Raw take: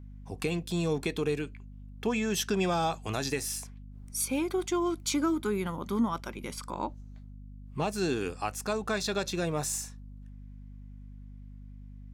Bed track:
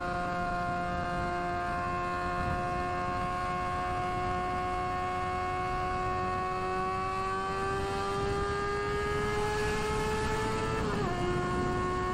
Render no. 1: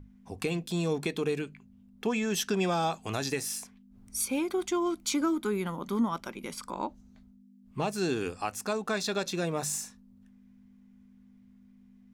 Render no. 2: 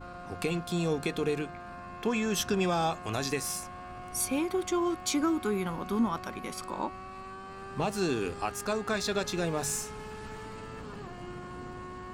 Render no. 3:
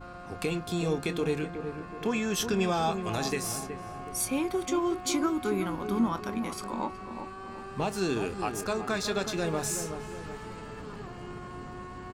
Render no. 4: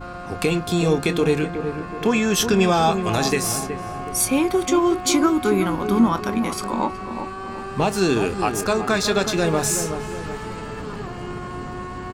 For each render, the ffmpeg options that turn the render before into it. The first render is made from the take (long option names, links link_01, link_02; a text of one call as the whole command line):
ffmpeg -i in.wav -af "bandreject=frequency=50:width_type=h:width=6,bandreject=frequency=100:width_type=h:width=6,bandreject=frequency=150:width_type=h:width=6" out.wav
ffmpeg -i in.wav -i bed.wav -filter_complex "[1:a]volume=-11.5dB[link_01];[0:a][link_01]amix=inputs=2:normalize=0" out.wav
ffmpeg -i in.wav -filter_complex "[0:a]asplit=2[link_01][link_02];[link_02]adelay=26,volume=-14dB[link_03];[link_01][link_03]amix=inputs=2:normalize=0,asplit=2[link_04][link_05];[link_05]adelay=371,lowpass=frequency=970:poles=1,volume=-7dB,asplit=2[link_06][link_07];[link_07]adelay=371,lowpass=frequency=970:poles=1,volume=0.5,asplit=2[link_08][link_09];[link_09]adelay=371,lowpass=frequency=970:poles=1,volume=0.5,asplit=2[link_10][link_11];[link_11]adelay=371,lowpass=frequency=970:poles=1,volume=0.5,asplit=2[link_12][link_13];[link_13]adelay=371,lowpass=frequency=970:poles=1,volume=0.5,asplit=2[link_14][link_15];[link_15]adelay=371,lowpass=frequency=970:poles=1,volume=0.5[link_16];[link_04][link_06][link_08][link_10][link_12][link_14][link_16]amix=inputs=7:normalize=0" out.wav
ffmpeg -i in.wav -af "volume=10dB" out.wav